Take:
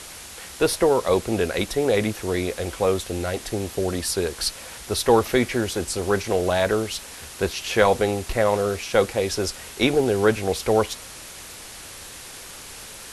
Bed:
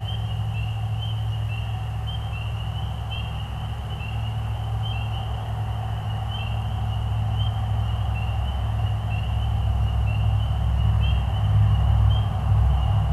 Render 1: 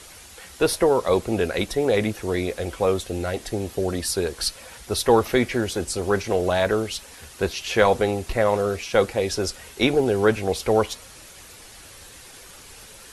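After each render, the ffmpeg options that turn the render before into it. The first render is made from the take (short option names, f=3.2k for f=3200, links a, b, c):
-af "afftdn=nr=7:nf=-40"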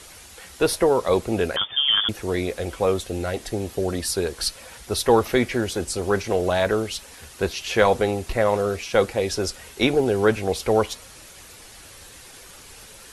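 -filter_complex "[0:a]asettb=1/sr,asplit=3[a][b][c];[a]atrim=end=1.564[d];[b]atrim=start=1.56:end=2.09,asetpts=PTS-STARTPTS,afade=t=in:d=0.004:c=qsin,afade=t=out:st=0.526:d=0.004:c=qsin,lowpass=f=3.1k:t=q:w=0.5098,lowpass=f=3.1k:t=q:w=0.6013,lowpass=f=3.1k:t=q:w=0.9,lowpass=f=3.1k:t=q:w=2.563,afreqshift=-3600[e];[c]atrim=start=2.086[f];[d][e]acrossfade=d=0.004:c1=hsin:c2=qsin[g];[g][f]acrossfade=d=0.004:c1=qsin:c2=hsin"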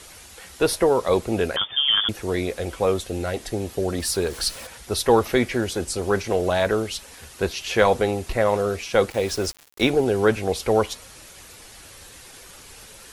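-filter_complex "[0:a]asettb=1/sr,asplit=3[a][b][c];[a]atrim=end=3.984[d];[b]atrim=start=3.98:end=4.67,asetpts=PTS-STARTPTS,afade=t=in:d=0.004:c=qsin,afade=t=out:st=0.686:d=0.004:c=qsin,aeval=exprs='val(0)+0.5*0.0141*sgn(val(0))':c=same[e];[c]atrim=start=4.666[f];[d][e]acrossfade=d=0.004:c1=hsin:c2=qsin[g];[g][f]acrossfade=d=0.004:c1=qsin:c2=hsin,asettb=1/sr,asplit=3[h][i][j];[h]atrim=end=9.104[k];[i]atrim=start=9.1:end=9.9,asetpts=PTS-STARTPTS,afade=t=in:d=0.004:c=qsin,afade=t=out:st=0.796:d=0.004:c=qsin,aeval=exprs='val(0)*gte(abs(val(0)),0.02)':c=same[l];[j]atrim=start=9.896[m];[k][l]acrossfade=d=0.004:c1=hsin:c2=qsin[n];[n][m]acrossfade=d=0.004:c1=qsin:c2=hsin"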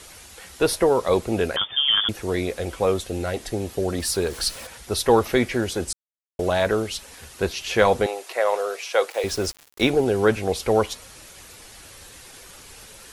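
-filter_complex "[0:a]asettb=1/sr,asplit=3[a][b][c];[a]atrim=end=8.064[d];[b]atrim=start=8.06:end=9.24,asetpts=PTS-STARTPTS,afade=t=in:d=0.004:c=qsin,afade=t=out:st=1.176:d=0.004:c=qsin,highpass=f=460:w=0.5412,highpass=f=460:w=1.3066[e];[c]atrim=start=9.236[f];[d][e]acrossfade=d=0.004:c1=hsin:c2=qsin[g];[g][f]acrossfade=d=0.004:c1=qsin:c2=hsin,asplit=3[h][i][j];[h]atrim=end=5.93,asetpts=PTS-STARTPTS,afade=t=out:st=5.926:d=0.004:c=hsin[k];[i]atrim=start=5.93:end=6.39,asetpts=PTS-STARTPTS,volume=0[l];[j]atrim=start=6.39,asetpts=PTS-STARTPTS,afade=t=in:d=0.004:c=hsin[m];[k][l][m]concat=n=3:v=0:a=1"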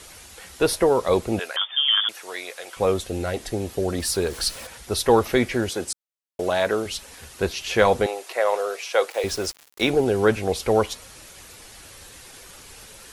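-filter_complex "[0:a]asettb=1/sr,asplit=3[a][b][c];[a]atrim=end=1.394[d];[b]atrim=start=1.39:end=2.77,asetpts=PTS-STARTPTS,afade=t=in:d=0.004:c=qsin,afade=t=out:st=1.376:d=0.004:c=qsin,highpass=890[e];[c]atrim=start=2.766[f];[d][e]acrossfade=d=0.004:c1=hsin:c2=qsin[g];[g][f]acrossfade=d=0.004:c1=qsin:c2=hsin,asettb=1/sr,asplit=3[h][i][j];[h]atrim=end=5.694[k];[i]atrim=start=5.69:end=6.86,asetpts=PTS-STARTPTS,afade=t=in:d=0.004:c=qsin,afade=t=out:st=1.166:d=0.004:c=qsin,highpass=f=240:p=1[l];[j]atrim=start=6.856[m];[k][l]acrossfade=d=0.004:c1=hsin:c2=qsin[n];[n][m]acrossfade=d=0.004:c1=qsin:c2=hsin,asettb=1/sr,asplit=3[o][p][q];[o]atrim=end=9.374[r];[p]atrim=start=9.37:end=9.88,asetpts=PTS-STARTPTS,afade=t=in:d=0.004:c=qsin,afade=t=out:st=0.506:d=0.004:c=qsin,lowshelf=f=270:g=-7.5[s];[q]atrim=start=9.876[t];[r][s]acrossfade=d=0.004:c1=hsin:c2=qsin[u];[u][t]acrossfade=d=0.004:c1=qsin:c2=hsin"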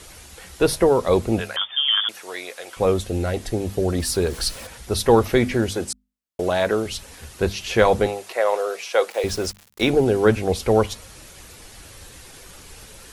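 -af "lowshelf=f=270:g=7.5,bandreject=f=50:t=h:w=6,bandreject=f=100:t=h:w=6,bandreject=f=150:t=h:w=6,bandreject=f=200:t=h:w=6,bandreject=f=250:t=h:w=6"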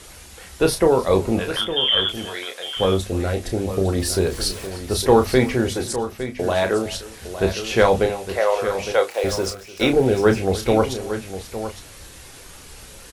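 -filter_complex "[0:a]asplit=2[a][b];[b]adelay=31,volume=-7dB[c];[a][c]amix=inputs=2:normalize=0,aecho=1:1:301|859:0.112|0.282"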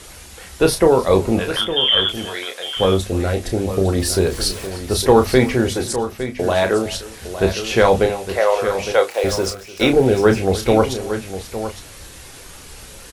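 -af "volume=3dB,alimiter=limit=-1dB:level=0:latency=1"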